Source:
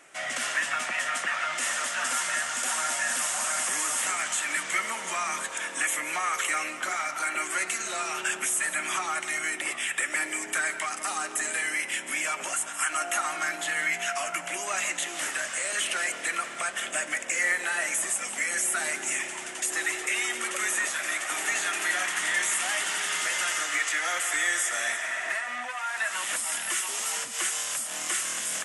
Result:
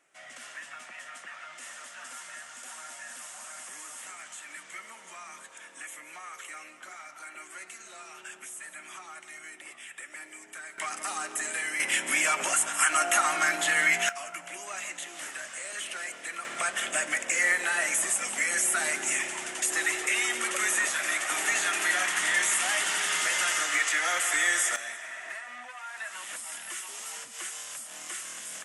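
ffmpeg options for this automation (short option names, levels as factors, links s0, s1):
-af "asetnsamples=n=441:p=0,asendcmd='10.78 volume volume -3dB;11.8 volume volume 4dB;14.09 volume volume -8dB;16.45 volume volume 1dB;24.76 volume volume -9dB',volume=0.178"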